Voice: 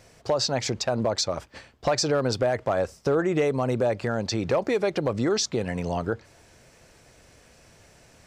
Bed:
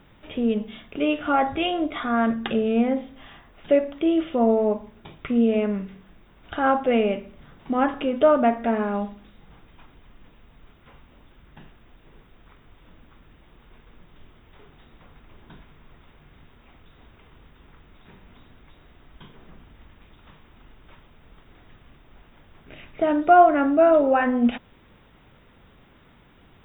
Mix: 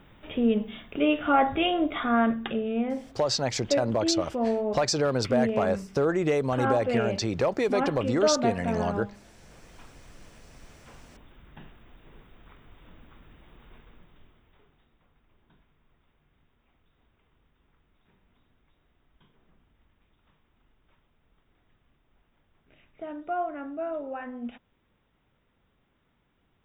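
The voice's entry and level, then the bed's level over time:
2.90 s, −1.5 dB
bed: 0:02.16 −0.5 dB
0:02.63 −7 dB
0:09.32 −7 dB
0:09.74 −0.5 dB
0:13.74 −0.5 dB
0:14.97 −16.5 dB

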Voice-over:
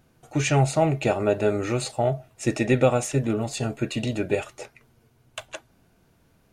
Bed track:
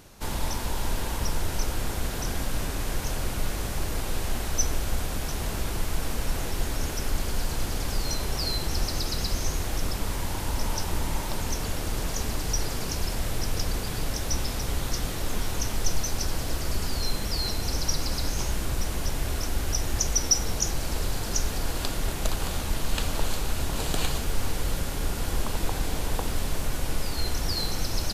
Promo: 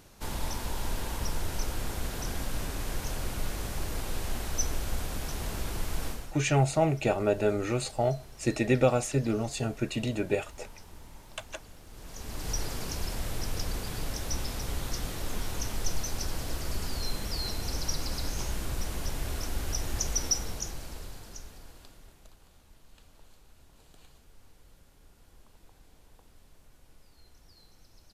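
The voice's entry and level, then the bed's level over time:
6.00 s, −4.0 dB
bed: 0:06.08 −4.5 dB
0:06.38 −21 dB
0:11.87 −21 dB
0:12.49 −5 dB
0:20.26 −5 dB
0:22.42 −30 dB

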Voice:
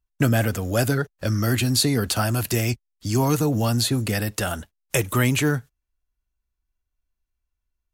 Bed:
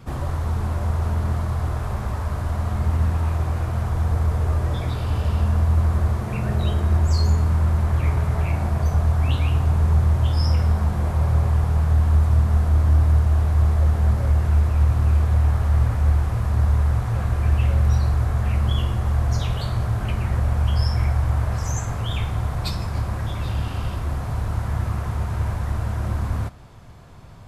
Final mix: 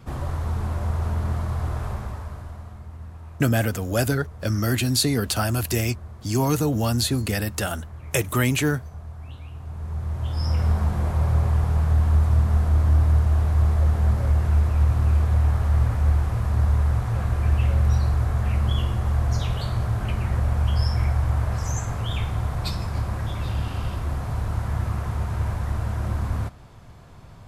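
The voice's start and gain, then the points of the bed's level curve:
3.20 s, −1.0 dB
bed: 0:01.87 −2.5 dB
0:02.87 −18.5 dB
0:09.52 −18.5 dB
0:10.68 −1.5 dB

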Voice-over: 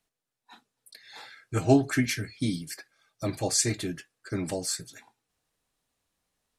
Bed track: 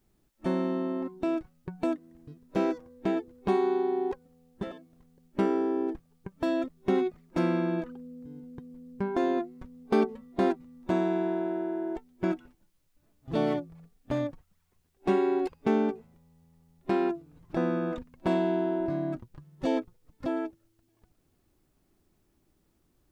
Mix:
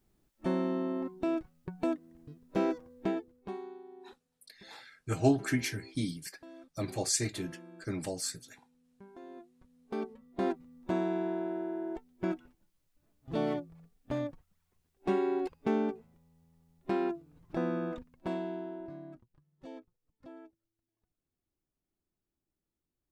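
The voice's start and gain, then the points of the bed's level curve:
3.55 s, −5.0 dB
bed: 0:03.04 −2.5 dB
0:03.83 −23 dB
0:09.21 −23 dB
0:10.55 −4.5 dB
0:17.83 −4.5 dB
0:19.44 −19.5 dB

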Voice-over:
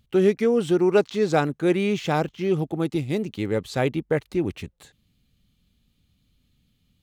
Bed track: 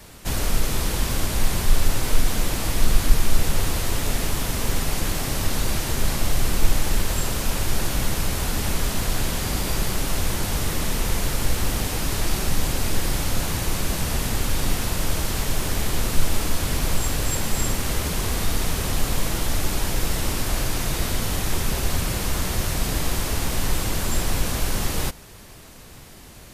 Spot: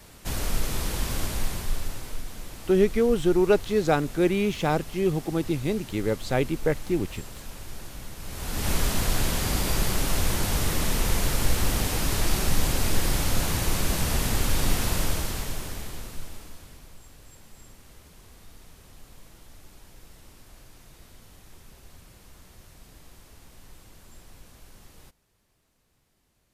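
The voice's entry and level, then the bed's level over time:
2.55 s, −1.5 dB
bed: 0:01.26 −5 dB
0:02.26 −16.5 dB
0:08.17 −16.5 dB
0:08.71 −1 dB
0:14.97 −1 dB
0:16.93 −26.5 dB

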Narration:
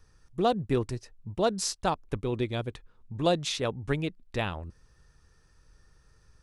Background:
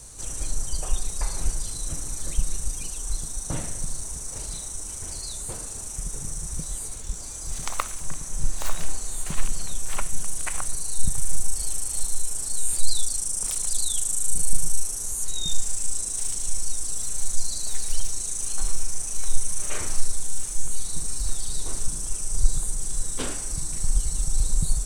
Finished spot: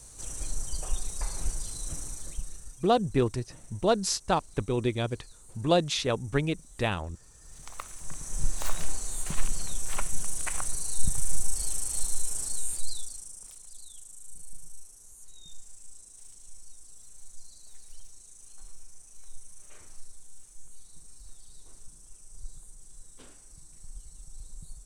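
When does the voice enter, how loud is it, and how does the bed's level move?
2.45 s, +2.0 dB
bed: 0:02.04 −5.5 dB
0:02.90 −21 dB
0:07.32 −21 dB
0:08.36 −3 dB
0:12.43 −3 dB
0:13.64 −22 dB

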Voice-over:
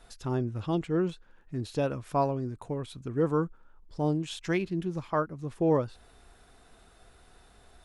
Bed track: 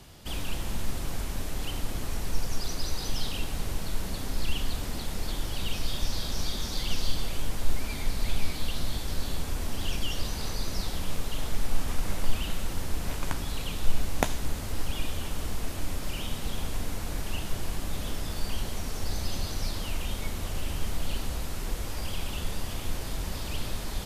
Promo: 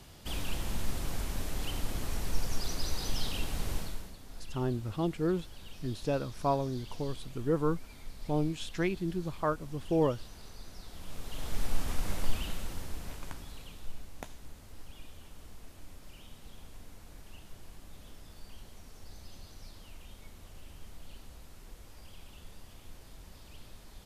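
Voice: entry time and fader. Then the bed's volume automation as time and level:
4.30 s, −2.5 dB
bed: 0:03.78 −2.5 dB
0:04.17 −17 dB
0:10.82 −17 dB
0:11.60 −3.5 dB
0:12.27 −3.5 dB
0:14.10 −18 dB

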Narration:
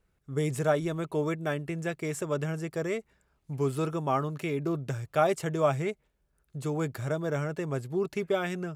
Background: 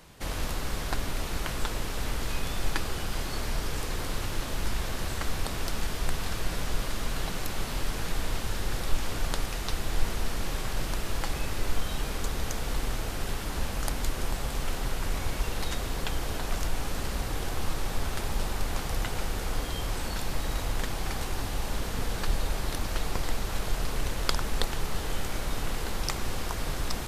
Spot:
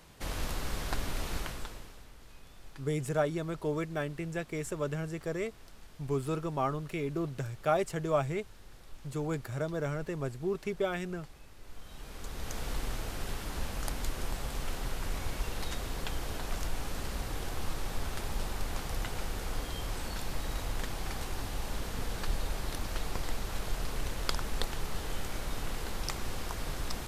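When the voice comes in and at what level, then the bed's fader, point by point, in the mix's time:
2.50 s, −3.5 dB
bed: 0:01.37 −3.5 dB
0:02.09 −22.5 dB
0:11.58 −22.5 dB
0:12.59 −5 dB

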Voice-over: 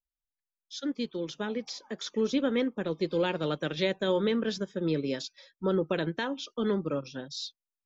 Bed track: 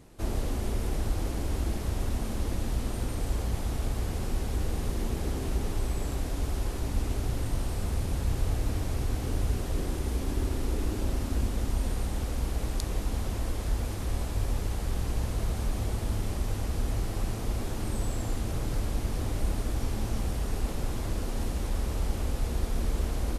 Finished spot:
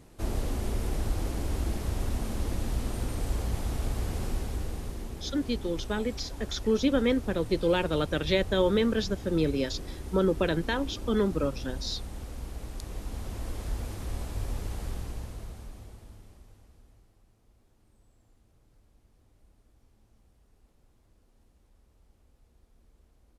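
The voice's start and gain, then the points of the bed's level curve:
4.50 s, +2.5 dB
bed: 0:04.26 −0.5 dB
0:05.14 −8.5 dB
0:12.71 −8.5 dB
0:13.57 −4 dB
0:14.86 −4 dB
0:17.23 −33.5 dB

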